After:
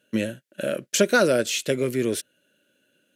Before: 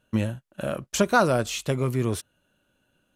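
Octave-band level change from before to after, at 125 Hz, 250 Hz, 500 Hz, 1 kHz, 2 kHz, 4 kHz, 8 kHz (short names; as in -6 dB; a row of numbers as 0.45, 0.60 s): -7.0, +1.0, +3.5, -5.0, +3.0, +5.0, +5.0 dB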